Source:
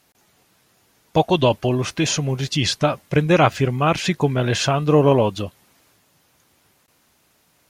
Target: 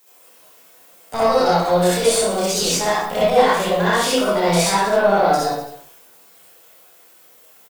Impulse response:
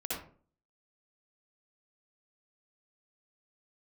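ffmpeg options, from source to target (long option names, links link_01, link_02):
-filter_complex "[0:a]aemphasis=mode=production:type=50fm,bandreject=frequency=50:width_type=h:width=6,bandreject=frequency=100:width_type=h:width=6,bandreject=frequency=150:width_type=h:width=6,bandreject=frequency=200:width_type=h:width=6,acrossover=split=7200[link_01][link_02];[link_02]acompressor=threshold=-36dB:ratio=4:attack=1:release=60[link_03];[link_01][link_03]amix=inputs=2:normalize=0,lowshelf=frequency=230:width_type=q:width=1.5:gain=-9,acompressor=threshold=-19dB:ratio=4,asetrate=62367,aresample=44100,atempo=0.707107,aeval=exprs='(tanh(6.31*val(0)+0.35)-tanh(0.35))/6.31':channel_layout=same,aecho=1:1:30|69|119.7|185.6|271.3:0.631|0.398|0.251|0.158|0.1[link_04];[1:a]atrim=start_sample=2205,afade=type=out:start_time=0.31:duration=0.01,atrim=end_sample=14112[link_05];[link_04][link_05]afir=irnorm=-1:irlink=0,volume=3dB"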